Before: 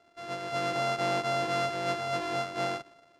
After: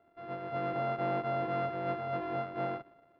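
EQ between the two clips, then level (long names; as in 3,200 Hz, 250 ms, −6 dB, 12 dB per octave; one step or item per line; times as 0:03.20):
high-frequency loss of the air 230 metres
head-to-tape spacing loss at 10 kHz 31 dB
0.0 dB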